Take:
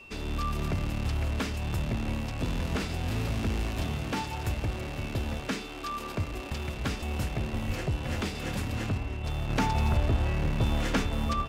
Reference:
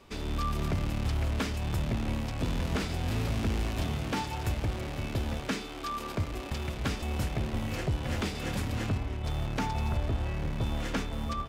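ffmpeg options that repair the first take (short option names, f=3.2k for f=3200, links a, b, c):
-filter_complex "[0:a]bandreject=f=2.7k:w=30,asplit=3[a][b][c];[a]afade=t=out:st=7.66:d=0.02[d];[b]highpass=f=140:w=0.5412,highpass=f=140:w=1.3066,afade=t=in:st=7.66:d=0.02,afade=t=out:st=7.78:d=0.02[e];[c]afade=t=in:st=7.78:d=0.02[f];[d][e][f]amix=inputs=3:normalize=0,asplit=3[g][h][i];[g]afade=t=out:st=11.02:d=0.02[j];[h]highpass=f=140:w=0.5412,highpass=f=140:w=1.3066,afade=t=in:st=11.02:d=0.02,afade=t=out:st=11.14:d=0.02[k];[i]afade=t=in:st=11.14:d=0.02[l];[j][k][l]amix=inputs=3:normalize=0,asetnsamples=n=441:p=0,asendcmd='9.49 volume volume -4.5dB',volume=0dB"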